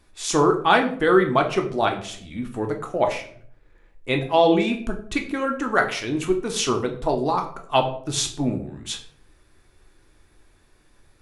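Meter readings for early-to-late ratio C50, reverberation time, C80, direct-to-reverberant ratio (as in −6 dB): 10.0 dB, 0.55 s, 14.5 dB, 3.0 dB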